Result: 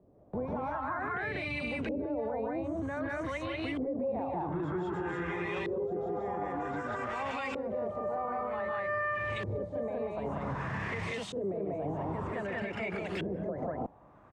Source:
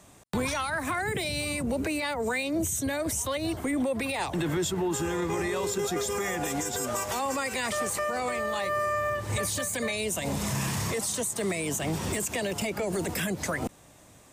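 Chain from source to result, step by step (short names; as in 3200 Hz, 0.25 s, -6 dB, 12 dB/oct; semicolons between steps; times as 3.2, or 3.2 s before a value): loudspeakers at several distances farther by 51 m -4 dB, 65 m 0 dB; LFO low-pass saw up 0.53 Hz 430–3100 Hz; limiter -18.5 dBFS, peak gain reduction 8 dB; gain -8 dB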